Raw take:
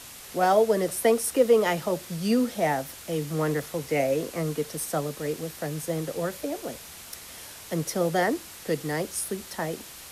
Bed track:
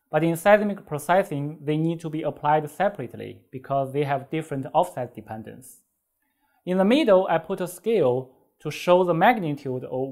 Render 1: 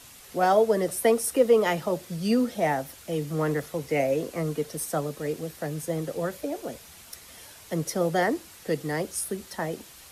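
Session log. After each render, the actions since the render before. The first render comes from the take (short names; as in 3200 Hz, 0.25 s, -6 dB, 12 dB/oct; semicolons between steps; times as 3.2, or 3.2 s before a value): denoiser 6 dB, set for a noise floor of -44 dBFS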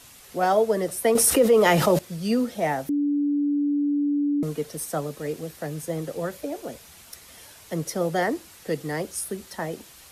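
1.15–1.99 fast leveller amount 70%; 2.89–4.43 bleep 289 Hz -20 dBFS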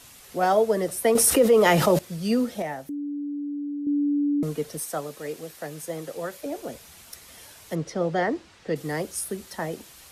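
2.62–3.87 resonator 590 Hz, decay 0.19 s, harmonics odd; 4.8–6.46 low shelf 270 Hz -11 dB; 7.75–8.76 air absorption 120 m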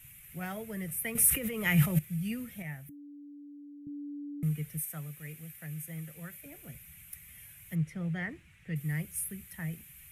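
EQ curve 100 Hz 0 dB, 150 Hz +4 dB, 250 Hz -16 dB, 490 Hz -24 dB, 1000 Hz -22 dB, 2300 Hz -1 dB, 4700 Hz -24 dB, 12000 Hz +1 dB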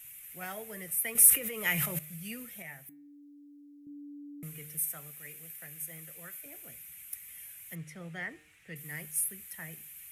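tone controls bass -14 dB, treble +5 dB; de-hum 152.6 Hz, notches 29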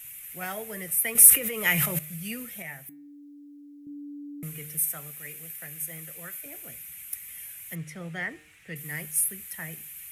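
gain +6 dB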